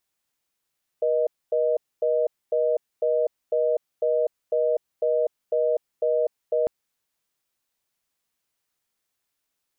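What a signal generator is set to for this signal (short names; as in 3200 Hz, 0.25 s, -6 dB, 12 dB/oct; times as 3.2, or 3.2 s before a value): call progress tone reorder tone, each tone -22 dBFS 5.65 s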